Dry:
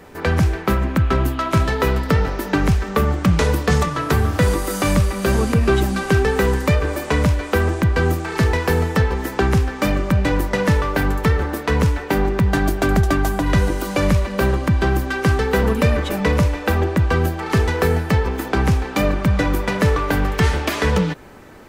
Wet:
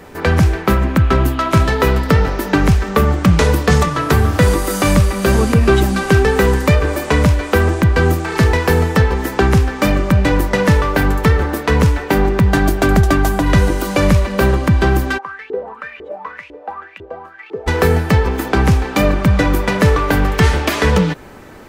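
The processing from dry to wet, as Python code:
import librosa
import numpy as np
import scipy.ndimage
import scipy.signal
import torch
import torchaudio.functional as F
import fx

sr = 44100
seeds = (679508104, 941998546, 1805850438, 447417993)

y = fx.filter_lfo_bandpass(x, sr, shape='saw_up', hz=2.0, low_hz=360.0, high_hz=3000.0, q=7.7, at=(15.17, 17.66), fade=0.02)
y = F.gain(torch.from_numpy(y), 4.5).numpy()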